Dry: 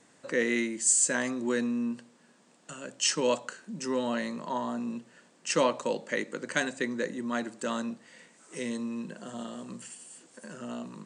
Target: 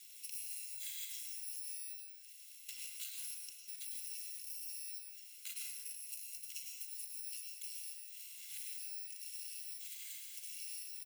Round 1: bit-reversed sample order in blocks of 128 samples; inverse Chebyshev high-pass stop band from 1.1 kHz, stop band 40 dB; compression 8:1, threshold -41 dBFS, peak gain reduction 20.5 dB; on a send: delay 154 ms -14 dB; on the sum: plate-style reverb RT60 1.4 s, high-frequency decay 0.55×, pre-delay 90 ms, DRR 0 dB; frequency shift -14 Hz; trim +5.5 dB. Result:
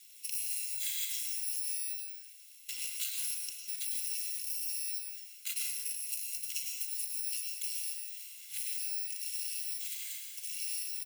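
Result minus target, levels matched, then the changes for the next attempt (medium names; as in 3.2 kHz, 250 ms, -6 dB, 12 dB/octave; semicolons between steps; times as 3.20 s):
compression: peak gain reduction -9 dB
change: compression 8:1, threshold -51.5 dBFS, peak gain reduction 29.5 dB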